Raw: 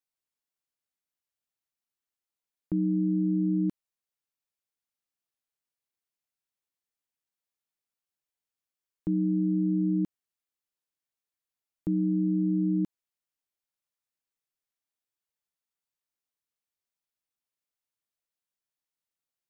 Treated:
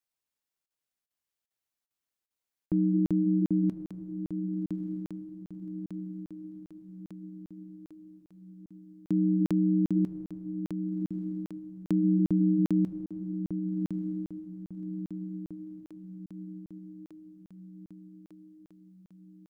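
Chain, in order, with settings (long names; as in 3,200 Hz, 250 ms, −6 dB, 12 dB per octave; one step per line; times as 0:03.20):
flanger 0.57 Hz, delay 0.9 ms, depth 5.7 ms, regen −88%
on a send: feedback delay with all-pass diffusion 1,140 ms, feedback 54%, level −8 dB
on the sum: regular buffer underruns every 0.40 s, samples 2,048, zero, from 0:00.66
level +5.5 dB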